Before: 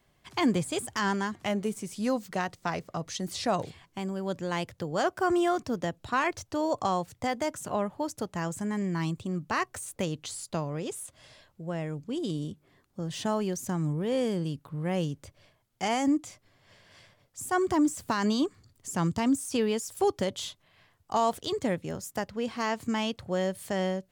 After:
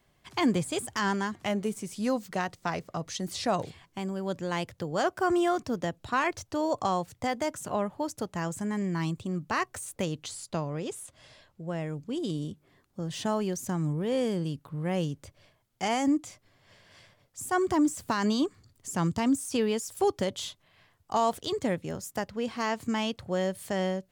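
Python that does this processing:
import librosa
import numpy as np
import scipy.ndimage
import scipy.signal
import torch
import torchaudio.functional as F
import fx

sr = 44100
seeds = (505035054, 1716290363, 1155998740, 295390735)

y = fx.high_shelf(x, sr, hz=11000.0, db=-7.0, at=(10.28, 11.69))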